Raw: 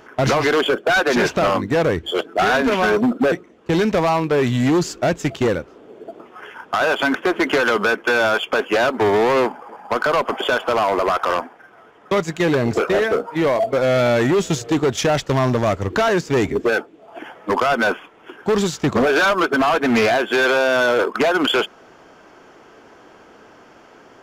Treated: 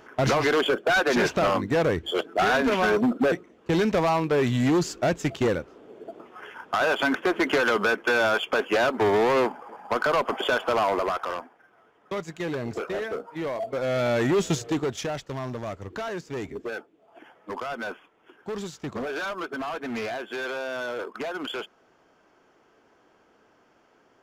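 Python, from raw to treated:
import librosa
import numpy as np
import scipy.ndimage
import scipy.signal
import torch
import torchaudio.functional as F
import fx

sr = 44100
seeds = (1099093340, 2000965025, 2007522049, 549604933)

y = fx.gain(x, sr, db=fx.line((10.88, -5.0), (11.4, -12.5), (13.53, -12.5), (14.49, -4.0), (15.25, -15.0)))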